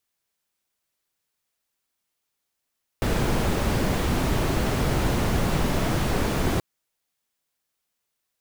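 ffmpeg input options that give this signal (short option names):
-f lavfi -i "anoisesrc=c=brown:a=0.351:d=3.58:r=44100:seed=1"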